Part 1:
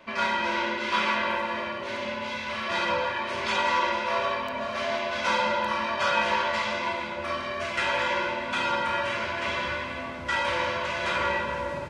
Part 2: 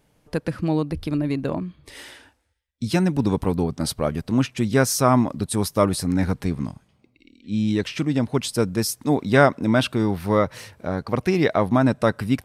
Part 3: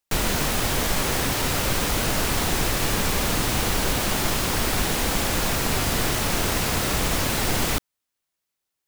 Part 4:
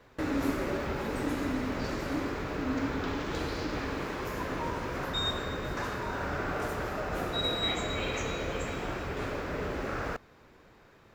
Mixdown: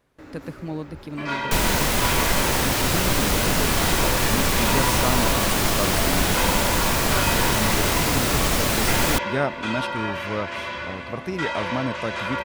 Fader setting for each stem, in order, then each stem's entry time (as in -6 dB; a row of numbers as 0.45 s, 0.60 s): -1.5 dB, -9.0 dB, +2.0 dB, -11.5 dB; 1.10 s, 0.00 s, 1.40 s, 0.00 s